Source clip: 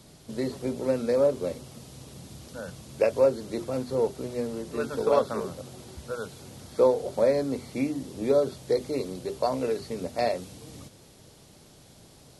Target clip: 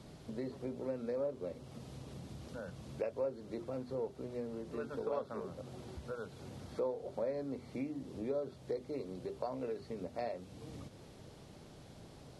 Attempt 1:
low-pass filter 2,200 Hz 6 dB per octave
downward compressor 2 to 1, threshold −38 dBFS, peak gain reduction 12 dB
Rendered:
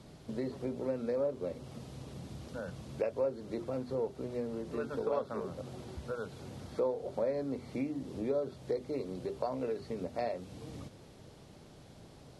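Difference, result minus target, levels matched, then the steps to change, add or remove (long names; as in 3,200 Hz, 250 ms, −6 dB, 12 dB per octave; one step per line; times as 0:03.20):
downward compressor: peak gain reduction −4.5 dB
change: downward compressor 2 to 1, threshold −46.5 dBFS, peak gain reduction 16 dB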